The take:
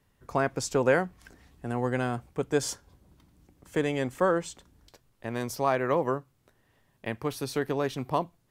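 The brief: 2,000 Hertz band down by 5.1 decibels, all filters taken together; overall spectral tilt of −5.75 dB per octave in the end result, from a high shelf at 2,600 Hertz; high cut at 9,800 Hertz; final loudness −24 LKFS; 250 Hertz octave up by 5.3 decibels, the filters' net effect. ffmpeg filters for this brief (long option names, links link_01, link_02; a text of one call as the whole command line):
ffmpeg -i in.wav -af "lowpass=9800,equalizer=frequency=250:width_type=o:gain=6.5,equalizer=frequency=2000:width_type=o:gain=-8.5,highshelf=frequency=2600:gain=3,volume=4dB" out.wav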